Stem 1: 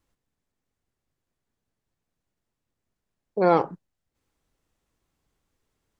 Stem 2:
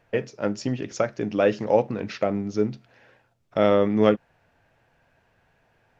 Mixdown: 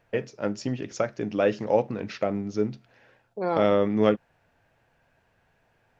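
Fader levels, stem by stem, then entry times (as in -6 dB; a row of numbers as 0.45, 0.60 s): -8.0, -2.5 dB; 0.00, 0.00 s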